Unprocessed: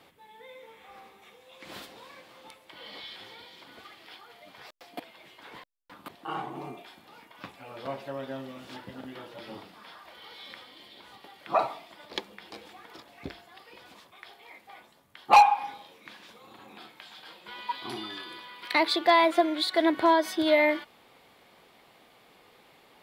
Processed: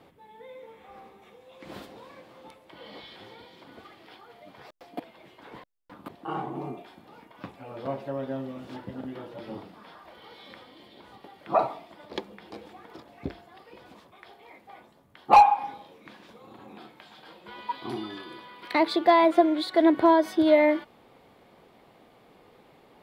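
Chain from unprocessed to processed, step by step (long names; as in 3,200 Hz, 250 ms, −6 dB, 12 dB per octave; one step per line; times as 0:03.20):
tilt shelving filter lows +6.5 dB, about 1,100 Hz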